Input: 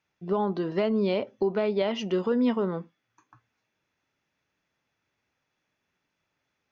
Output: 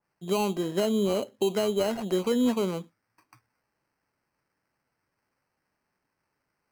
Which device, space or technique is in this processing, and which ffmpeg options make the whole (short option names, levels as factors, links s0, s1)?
crushed at another speed: -af "highpass=100,asetrate=22050,aresample=44100,acrusher=samples=25:mix=1:aa=0.000001,asetrate=88200,aresample=44100,adynamicequalizer=threshold=0.00794:dfrequency=2100:dqfactor=0.7:tfrequency=2100:tqfactor=0.7:attack=5:release=100:ratio=0.375:range=2.5:mode=cutabove:tftype=highshelf"